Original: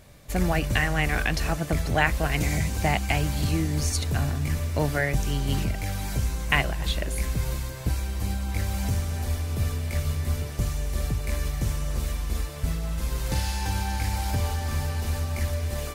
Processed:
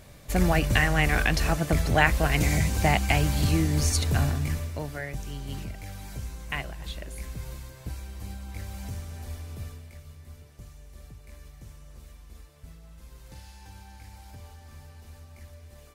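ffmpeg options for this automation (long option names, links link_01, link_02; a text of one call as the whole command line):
ffmpeg -i in.wav -af "volume=1.5dB,afade=type=out:start_time=4.23:duration=0.6:silence=0.266073,afade=type=out:start_time=9.49:duration=0.49:silence=0.334965" out.wav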